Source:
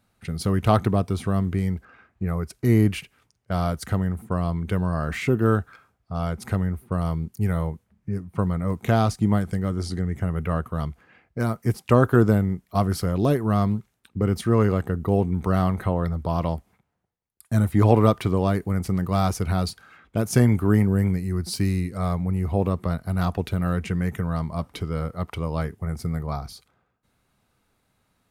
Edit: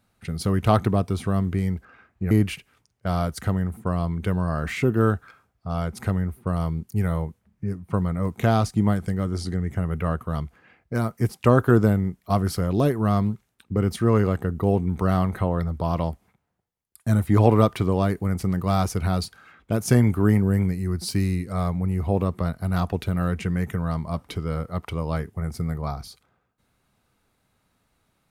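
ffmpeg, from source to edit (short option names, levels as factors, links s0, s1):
-filter_complex "[0:a]asplit=2[s0][s1];[s0]atrim=end=2.312[s2];[s1]atrim=start=2.758[s3];[s2][s3]acrossfade=d=0.004:c1=hsin:c2=hsin"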